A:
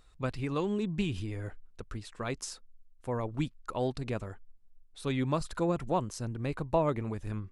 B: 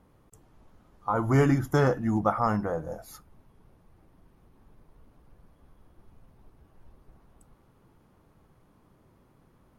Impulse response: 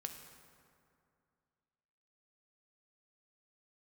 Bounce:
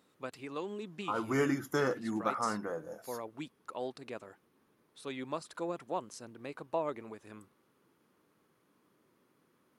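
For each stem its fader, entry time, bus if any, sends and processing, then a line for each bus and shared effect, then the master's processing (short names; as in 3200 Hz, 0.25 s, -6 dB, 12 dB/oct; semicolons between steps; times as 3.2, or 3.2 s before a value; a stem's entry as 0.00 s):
-5.5 dB, 0.00 s, no send, dry
-2.0 dB, 0.00 s, no send, bell 740 Hz -10 dB 0.99 oct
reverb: off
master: HPF 310 Hz 12 dB/oct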